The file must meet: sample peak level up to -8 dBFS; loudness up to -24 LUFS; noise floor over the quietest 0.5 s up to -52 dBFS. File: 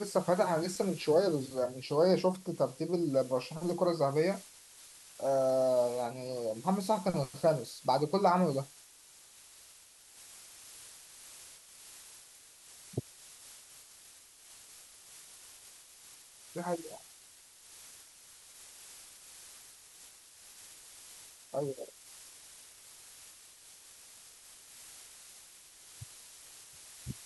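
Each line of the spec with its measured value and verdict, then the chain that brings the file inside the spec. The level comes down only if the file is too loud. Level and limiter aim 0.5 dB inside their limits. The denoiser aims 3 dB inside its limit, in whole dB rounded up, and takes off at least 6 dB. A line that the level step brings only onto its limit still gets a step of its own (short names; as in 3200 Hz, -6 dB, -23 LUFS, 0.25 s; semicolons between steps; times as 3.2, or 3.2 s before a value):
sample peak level -15.0 dBFS: OK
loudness -32.0 LUFS: OK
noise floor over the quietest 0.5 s -58 dBFS: OK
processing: none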